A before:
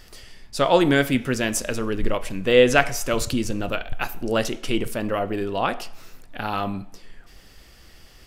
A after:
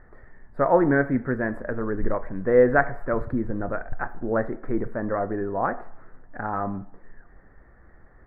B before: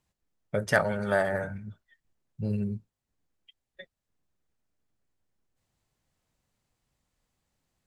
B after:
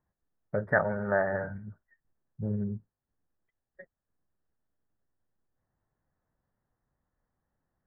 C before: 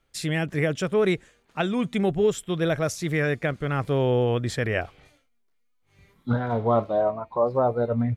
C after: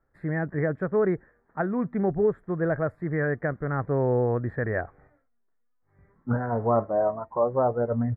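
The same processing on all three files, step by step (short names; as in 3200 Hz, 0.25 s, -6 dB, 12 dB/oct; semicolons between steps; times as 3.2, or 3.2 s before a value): elliptic low-pass 1800 Hz, stop band 40 dB; gain -1 dB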